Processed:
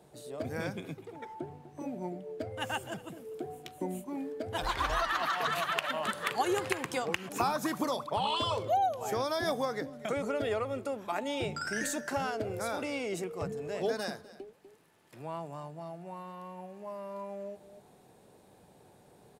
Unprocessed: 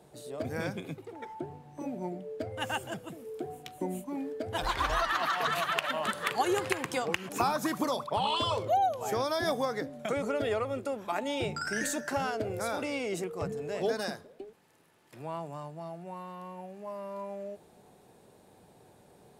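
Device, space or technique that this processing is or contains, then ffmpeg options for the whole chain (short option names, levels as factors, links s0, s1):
ducked delay: -filter_complex "[0:a]asplit=3[s0][s1][s2];[s1]adelay=246,volume=0.398[s3];[s2]apad=whole_len=866100[s4];[s3][s4]sidechaincompress=threshold=0.00282:ratio=5:attack=20:release=352[s5];[s0][s5]amix=inputs=2:normalize=0,volume=0.841"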